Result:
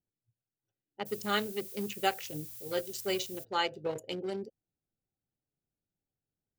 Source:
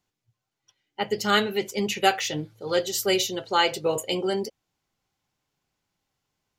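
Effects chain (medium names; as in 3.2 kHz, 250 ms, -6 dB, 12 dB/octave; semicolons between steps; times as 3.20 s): local Wiener filter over 41 samples; 1.05–3.43 s: added noise violet -38 dBFS; trim -8.5 dB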